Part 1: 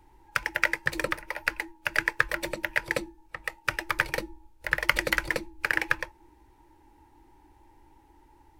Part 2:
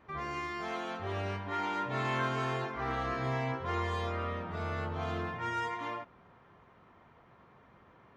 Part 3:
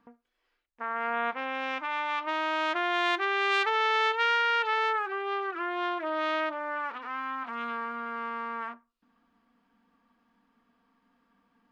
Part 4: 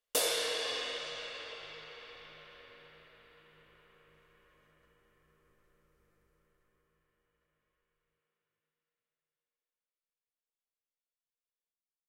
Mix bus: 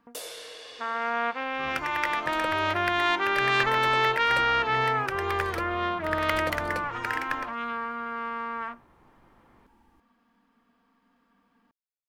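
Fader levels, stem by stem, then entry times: -6.5, -1.5, +2.0, -8.5 dB; 1.40, 1.50, 0.00, 0.00 s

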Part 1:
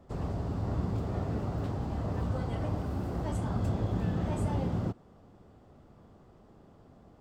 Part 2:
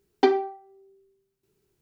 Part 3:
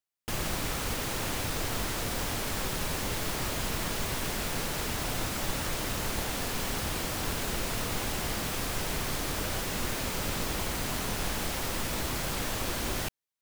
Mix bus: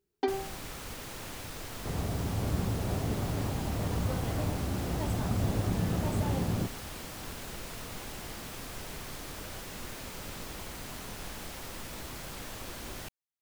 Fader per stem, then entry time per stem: +0.5, -10.5, -9.5 dB; 1.75, 0.00, 0.00 s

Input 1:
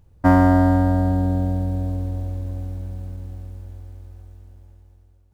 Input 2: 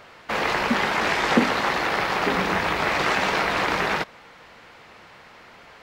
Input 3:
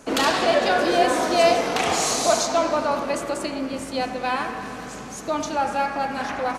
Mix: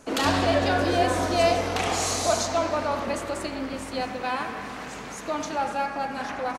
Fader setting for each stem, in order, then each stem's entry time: -13.0, -18.5, -4.0 dB; 0.00, 1.70, 0.00 s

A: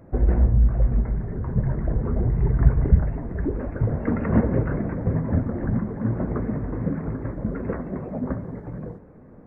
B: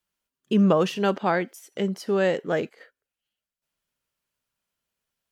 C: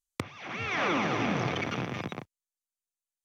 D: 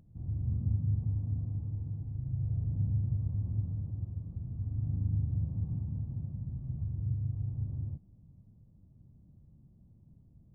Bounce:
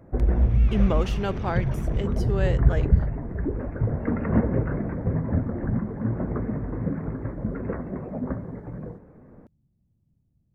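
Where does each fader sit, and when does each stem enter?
-2.0, -6.0, -14.5, -9.5 dB; 0.00, 0.20, 0.00, 0.00 s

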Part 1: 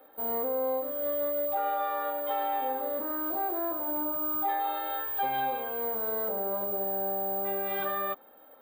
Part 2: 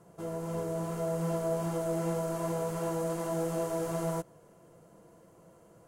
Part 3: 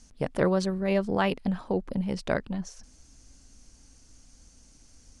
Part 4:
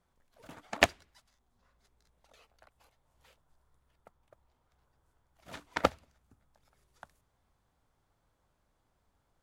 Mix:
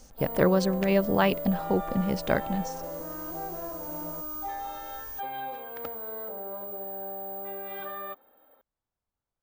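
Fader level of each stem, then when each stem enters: -6.0, -11.0, +2.0, -15.5 dB; 0.00, 0.00, 0.00, 0.00 s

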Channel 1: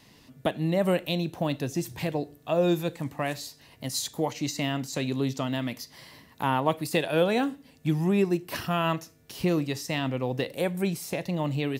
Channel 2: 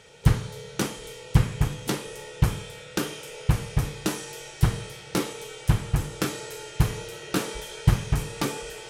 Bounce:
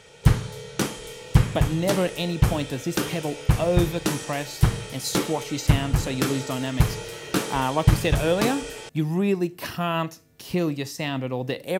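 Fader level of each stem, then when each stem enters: +1.0, +2.0 dB; 1.10, 0.00 s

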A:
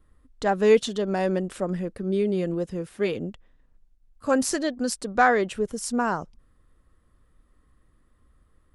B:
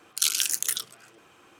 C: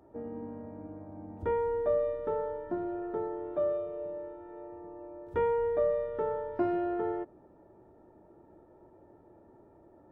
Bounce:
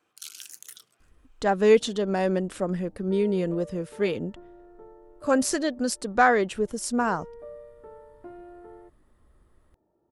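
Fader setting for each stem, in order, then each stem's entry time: 0.0, -17.5, -14.5 dB; 1.00, 0.00, 1.65 s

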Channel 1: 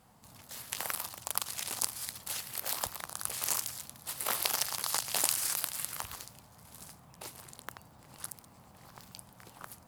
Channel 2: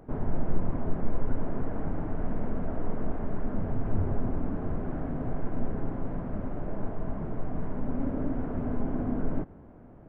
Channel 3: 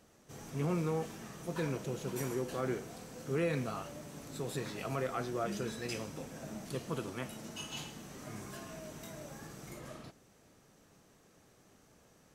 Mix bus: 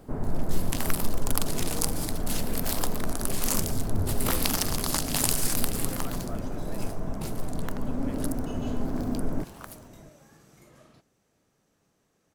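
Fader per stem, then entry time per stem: +3.0, +0.5, -7.5 dB; 0.00, 0.00, 0.90 s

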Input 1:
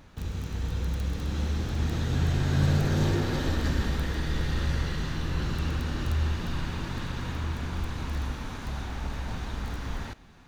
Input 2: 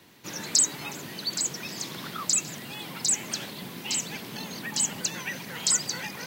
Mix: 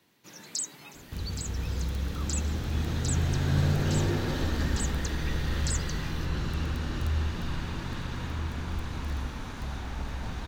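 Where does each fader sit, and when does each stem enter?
-1.5, -11.5 dB; 0.95, 0.00 s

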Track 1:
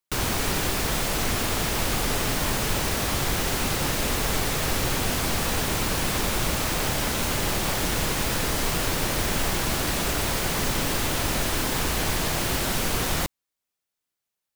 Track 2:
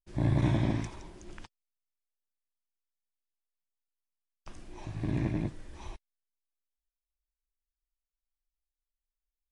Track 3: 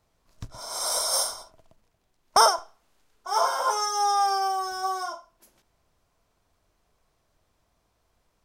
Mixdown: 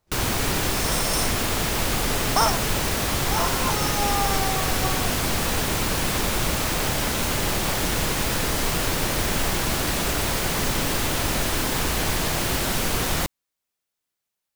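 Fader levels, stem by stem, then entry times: +1.5, -12.5, -3.5 dB; 0.00, 0.00, 0.00 s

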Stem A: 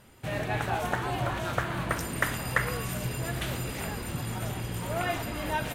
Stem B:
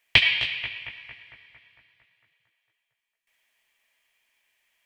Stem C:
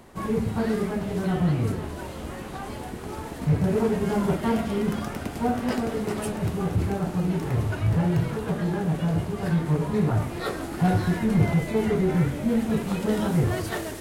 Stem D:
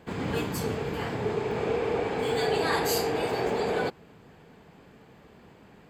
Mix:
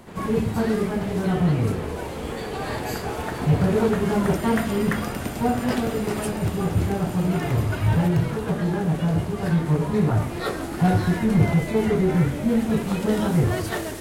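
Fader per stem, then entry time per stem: -3.5 dB, off, +2.5 dB, -7.5 dB; 2.35 s, off, 0.00 s, 0.00 s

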